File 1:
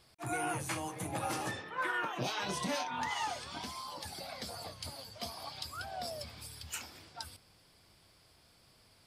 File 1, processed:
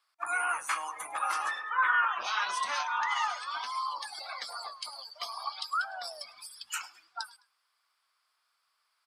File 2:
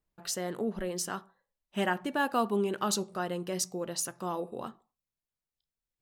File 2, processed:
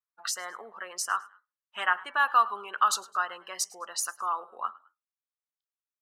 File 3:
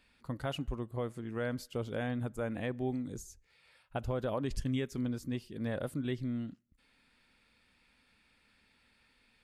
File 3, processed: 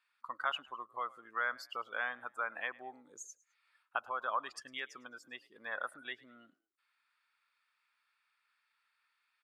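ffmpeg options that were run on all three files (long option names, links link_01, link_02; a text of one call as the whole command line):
ffmpeg -i in.wav -filter_complex "[0:a]afftdn=noise_reduction=20:noise_floor=-48,asplit=2[link_01][link_02];[link_02]acompressor=threshold=-44dB:ratio=6,volume=1.5dB[link_03];[link_01][link_03]amix=inputs=2:normalize=0,highpass=frequency=1200:width_type=q:width=3.5,asplit=3[link_04][link_05][link_06];[link_05]adelay=105,afreqshift=48,volume=-22dB[link_07];[link_06]adelay=210,afreqshift=96,volume=-31.6dB[link_08];[link_04][link_07][link_08]amix=inputs=3:normalize=0" out.wav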